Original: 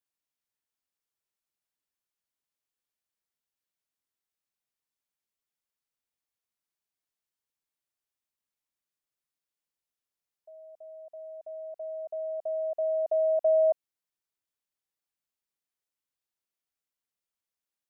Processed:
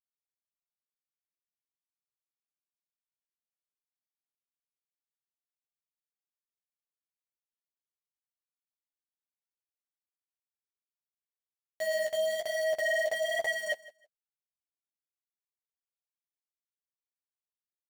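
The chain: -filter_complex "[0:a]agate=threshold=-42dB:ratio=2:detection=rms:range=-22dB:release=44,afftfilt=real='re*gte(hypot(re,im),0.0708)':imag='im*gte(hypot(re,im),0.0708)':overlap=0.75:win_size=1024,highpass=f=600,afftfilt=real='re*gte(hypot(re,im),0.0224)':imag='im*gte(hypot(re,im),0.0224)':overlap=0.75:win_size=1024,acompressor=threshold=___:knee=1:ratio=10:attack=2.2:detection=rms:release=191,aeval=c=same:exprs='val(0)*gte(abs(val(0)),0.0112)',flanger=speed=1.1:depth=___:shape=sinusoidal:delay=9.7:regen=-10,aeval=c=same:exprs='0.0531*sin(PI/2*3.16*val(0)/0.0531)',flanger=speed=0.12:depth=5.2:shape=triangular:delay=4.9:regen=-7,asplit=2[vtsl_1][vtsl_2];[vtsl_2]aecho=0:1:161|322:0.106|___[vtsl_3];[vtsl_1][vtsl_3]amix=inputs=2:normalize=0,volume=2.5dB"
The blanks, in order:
-27dB, 9.1, 0.0201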